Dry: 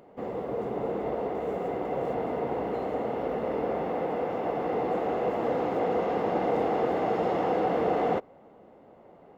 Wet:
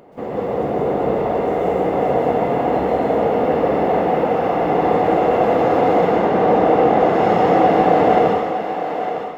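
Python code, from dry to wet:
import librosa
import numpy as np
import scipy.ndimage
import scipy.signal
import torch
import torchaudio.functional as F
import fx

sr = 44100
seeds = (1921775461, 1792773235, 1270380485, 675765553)

y = fx.high_shelf(x, sr, hz=4400.0, db=-9.5, at=(6.05, 7.0))
y = fx.echo_thinned(y, sr, ms=907, feedback_pct=25, hz=420.0, wet_db=-7.0)
y = fx.rev_plate(y, sr, seeds[0], rt60_s=0.97, hf_ratio=0.95, predelay_ms=115, drr_db=-3.0)
y = F.gain(torch.from_numpy(y), 7.5).numpy()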